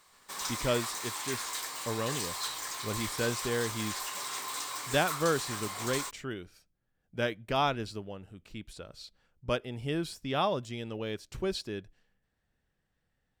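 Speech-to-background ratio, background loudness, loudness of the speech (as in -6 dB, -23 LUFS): 1.0 dB, -35.5 LUFS, -34.5 LUFS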